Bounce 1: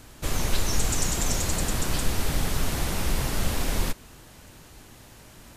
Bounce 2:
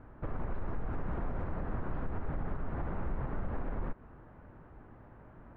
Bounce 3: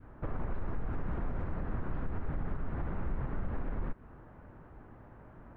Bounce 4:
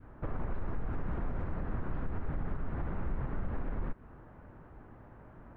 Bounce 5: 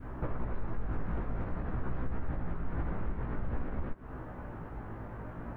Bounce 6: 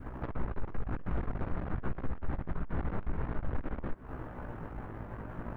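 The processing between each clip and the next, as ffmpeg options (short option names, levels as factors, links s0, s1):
-af "lowpass=f=1500:w=0.5412,lowpass=f=1500:w=1.3066,alimiter=limit=0.0708:level=0:latency=1:release=131,volume=0.668"
-af "adynamicequalizer=threshold=0.00224:dfrequency=710:dqfactor=0.72:tfrequency=710:tqfactor=0.72:attack=5:release=100:ratio=0.375:range=2:mode=cutabove:tftype=bell,volume=1.12"
-af anull
-af "acompressor=threshold=0.01:ratio=6,flanger=delay=15.5:depth=3.2:speed=0.5,volume=4.47"
-af "aeval=exprs='(tanh(44.7*val(0)+0.8)-tanh(0.8))/44.7':c=same,volume=1.78"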